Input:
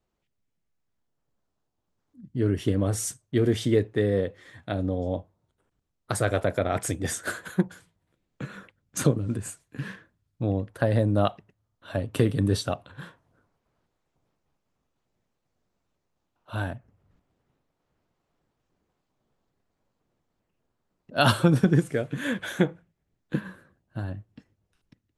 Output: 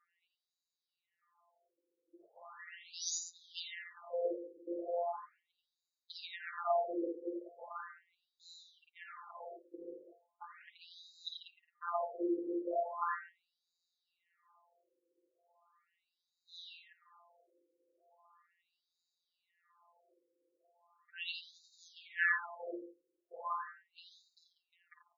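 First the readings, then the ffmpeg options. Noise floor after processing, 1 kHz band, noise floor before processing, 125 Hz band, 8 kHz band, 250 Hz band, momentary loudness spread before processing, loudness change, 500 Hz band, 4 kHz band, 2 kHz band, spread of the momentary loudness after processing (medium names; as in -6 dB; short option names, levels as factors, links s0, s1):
under -85 dBFS, -6.5 dB, -79 dBFS, under -40 dB, -11.5 dB, -18.5 dB, 15 LU, -13.0 dB, -12.5 dB, -10.5 dB, -6.5 dB, 22 LU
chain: -filter_complex "[0:a]acrossover=split=330|3000[s0][s1][s2];[s1]acompressor=threshold=0.0178:ratio=6[s3];[s0][s3][s2]amix=inputs=3:normalize=0,afftfilt=real='hypot(re,im)*cos(PI*b)':imag='0':win_size=1024:overlap=0.75,equalizer=f=160:t=o:w=0.33:g=10,equalizer=f=400:t=o:w=0.33:g=-6,equalizer=f=1250:t=o:w=0.33:g=9,equalizer=f=3150:t=o:w=0.33:g=-5,asplit=2[s4][s5];[s5]acrusher=bits=4:mode=log:mix=0:aa=0.000001,volume=0.299[s6];[s4][s6]amix=inputs=2:normalize=0,highshelf=f=2300:g=-10,areverse,acompressor=threshold=0.0251:ratio=12,areverse,bandreject=f=5600:w=5,aecho=1:1:4.8:0.49,aecho=1:1:48|54|86|143|192:0.237|0.422|0.501|0.2|0.168,afftfilt=real='re*between(b*sr/1024,370*pow(5200/370,0.5+0.5*sin(2*PI*0.38*pts/sr))/1.41,370*pow(5200/370,0.5+0.5*sin(2*PI*0.38*pts/sr))*1.41)':imag='im*between(b*sr/1024,370*pow(5200/370,0.5+0.5*sin(2*PI*0.38*pts/sr))/1.41,370*pow(5200/370,0.5+0.5*sin(2*PI*0.38*pts/sr))*1.41)':win_size=1024:overlap=0.75,volume=4.73"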